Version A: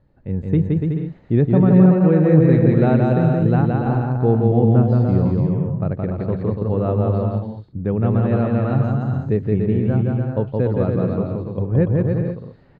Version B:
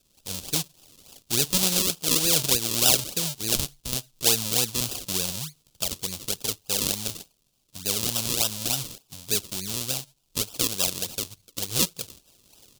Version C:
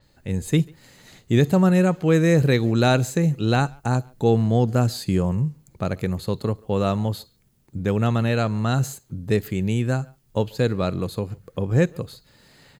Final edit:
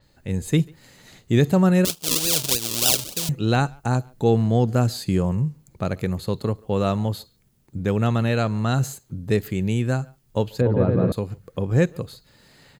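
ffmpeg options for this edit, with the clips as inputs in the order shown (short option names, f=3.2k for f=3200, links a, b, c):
-filter_complex "[2:a]asplit=3[a][b][c];[a]atrim=end=1.852[d];[1:a]atrim=start=1.848:end=3.292[e];[b]atrim=start=3.288:end=10.612[f];[0:a]atrim=start=10.608:end=11.122[g];[c]atrim=start=11.118[h];[d][e]acrossfade=d=0.004:c1=hsin:c2=hsin[i];[i][f]acrossfade=d=0.004:c1=hsin:c2=hsin[j];[j][g]acrossfade=d=0.004:c1=hsin:c2=hsin[k];[k][h]acrossfade=d=0.004:c1=hsin:c2=hsin"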